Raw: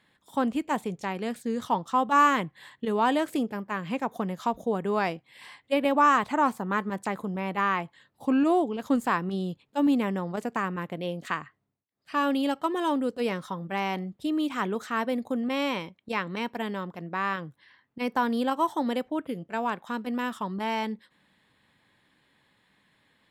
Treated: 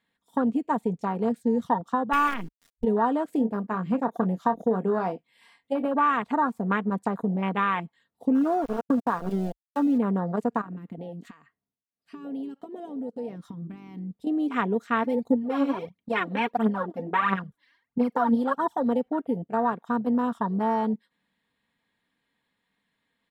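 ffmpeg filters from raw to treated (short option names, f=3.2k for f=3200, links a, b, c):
-filter_complex "[0:a]asettb=1/sr,asplit=3[a][b][c];[a]atrim=end=2.134[d];[b]atrim=start=2.13:end=2.84,asetpts=PTS-STARTPTS,afade=t=in:d=0.004:c=qsin,afade=t=out:st=0.706:d=0.004:c=qsin,acrusher=bits=4:dc=4:mix=0:aa=0.000001[e];[c]atrim=start=2.836[f];[d][e]acrossfade=d=0.004:c1=hsin:c2=qsin[g];[g][f]acrossfade=d=0.004:c1=qsin:c2=hsin,asettb=1/sr,asplit=3[h][i][j];[h]atrim=end=3.354[k];[i]atrim=start=3.35:end=5.94,asetpts=PTS-STARTPTS,afade=t=in:d=0.004:c=qsin,afade=t=out:st=2.586:d=0.004:c=qsin,asplit=2[l][m];[m]adelay=27,volume=-10dB[n];[l][n]amix=inputs=2:normalize=0,atrim=end_sample=114219[o];[j]atrim=start=5.936[p];[k][o]acrossfade=d=0.004:c1=hsin:c2=qsin[q];[q][p]acrossfade=d=0.004:c1=qsin:c2=hsin,asplit=3[r][s][t];[r]afade=t=out:st=8.34:d=0.02[u];[s]aeval=exprs='val(0)*gte(abs(val(0)),0.0355)':c=same,afade=t=in:st=8.34:d=0.02,afade=t=out:st=9.97:d=0.02[v];[t]afade=t=in:st=9.97:d=0.02[w];[u][v][w]amix=inputs=3:normalize=0,asettb=1/sr,asplit=3[x][y][z];[x]atrim=end=10.614[aa];[y]atrim=start=10.61:end=14.27,asetpts=PTS-STARTPTS,afade=t=in:d=0.004:c=qsin,afade=t=out:st=3.656:d=0.004:c=qsin,acompressor=threshold=-36dB:ratio=16:attack=3.2:release=140:knee=1:detection=peak[ab];[z]atrim=start=14.266[ac];[aa][ab]acrossfade=d=0.004:c1=hsin:c2=qsin[ad];[ad][ac]acrossfade=d=0.004:c1=qsin:c2=hsin,asplit=3[ae][af][ag];[ae]afade=t=out:st=15.03:d=0.02[ah];[af]aphaser=in_gain=1:out_gain=1:delay=4.1:decay=0.76:speed=1.5:type=triangular,afade=t=in:st=15.03:d=0.02,afade=t=out:st=18.81:d=0.02[ai];[ag]afade=t=in:st=18.81:d=0.02[aj];[ah][ai][aj]amix=inputs=3:normalize=0,acompressor=threshold=-27dB:ratio=4,afwtdn=0.0224,aecho=1:1:4.3:0.42,volume=5dB"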